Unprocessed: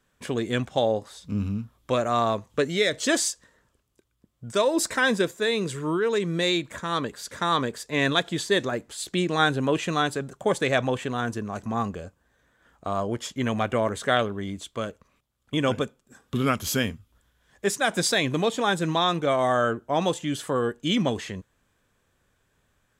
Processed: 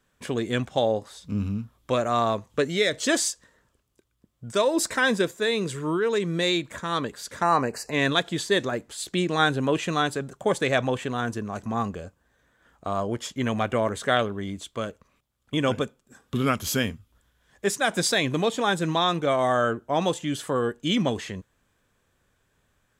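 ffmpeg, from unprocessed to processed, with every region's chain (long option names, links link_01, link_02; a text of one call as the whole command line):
ffmpeg -i in.wav -filter_complex "[0:a]asettb=1/sr,asplit=3[link_01][link_02][link_03];[link_01]atrim=end=7.424[link_04];[link_02]atrim=start=7.42:end=7.92,asetpts=PTS-STARTPTS,afade=type=in:duration=0.004:curve=qsin,afade=type=out:start_time=0.496:duration=0.004:curve=qsin,equalizer=frequency=760:width_type=o:width=0.55:gain=9,acompressor=mode=upward:threshold=-28dB:ratio=2.5:attack=3.2:release=140:knee=2.83:detection=peak,asuperstop=centerf=3400:order=20:qfactor=3.4[link_05];[link_03]atrim=start=7.916[link_06];[link_04][link_05]acrossfade=duration=0.004:curve1=hsin:curve2=qsin[link_07];[link_07][link_06]acrossfade=duration=0.004:curve1=qsin:curve2=hsin" out.wav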